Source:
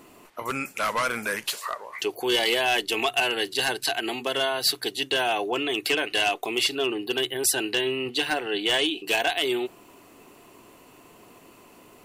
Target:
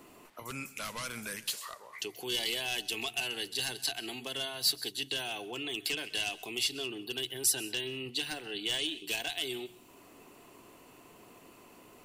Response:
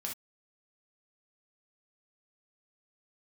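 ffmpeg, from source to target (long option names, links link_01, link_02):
-filter_complex "[0:a]acrossover=split=220|3000[link_01][link_02][link_03];[link_02]acompressor=threshold=-48dB:ratio=2[link_04];[link_01][link_04][link_03]amix=inputs=3:normalize=0,asplit=2[link_05][link_06];[1:a]atrim=start_sample=2205,adelay=129[link_07];[link_06][link_07]afir=irnorm=-1:irlink=0,volume=-18dB[link_08];[link_05][link_08]amix=inputs=2:normalize=0,volume=-4dB"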